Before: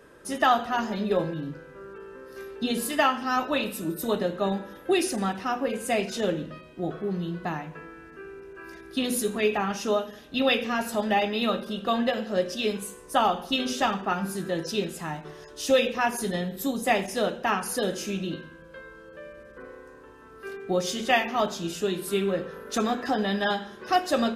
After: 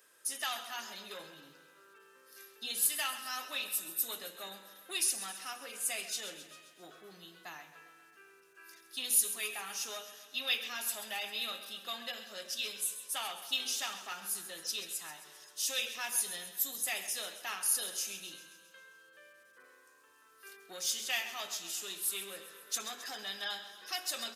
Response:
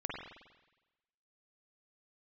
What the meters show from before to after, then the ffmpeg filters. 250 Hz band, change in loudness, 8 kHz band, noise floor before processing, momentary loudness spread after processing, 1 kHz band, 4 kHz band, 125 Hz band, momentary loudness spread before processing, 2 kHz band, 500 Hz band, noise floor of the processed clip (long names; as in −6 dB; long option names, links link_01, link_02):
−28.5 dB, −8.0 dB, +3.5 dB, −48 dBFS, 19 LU, −18.0 dB, −4.0 dB, below −30 dB, 19 LU, −9.5 dB, −23.5 dB, −62 dBFS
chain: -filter_complex "[0:a]acrossover=split=130|1900[link_01][link_02][link_03];[link_02]asoftclip=type=tanh:threshold=-22dB[link_04];[link_01][link_04][link_03]amix=inputs=3:normalize=0,aderivative,aecho=1:1:133|266|399|532|665|798|931:0.224|0.134|0.0806|0.0484|0.029|0.0174|0.0104,volume=2dB"